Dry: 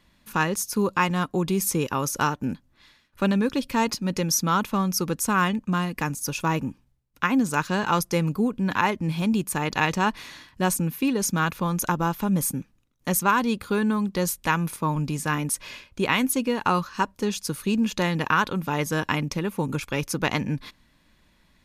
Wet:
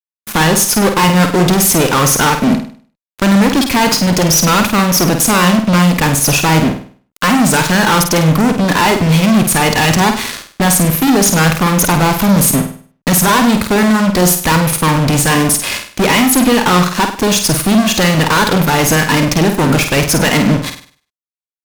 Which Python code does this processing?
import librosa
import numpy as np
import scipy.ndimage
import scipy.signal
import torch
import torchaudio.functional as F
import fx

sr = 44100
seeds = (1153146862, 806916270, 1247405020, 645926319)

y = fx.fuzz(x, sr, gain_db=38.0, gate_db=-40.0)
y = fx.room_flutter(y, sr, wall_m=8.6, rt60_s=0.45)
y = y * librosa.db_to_amplitude(3.5)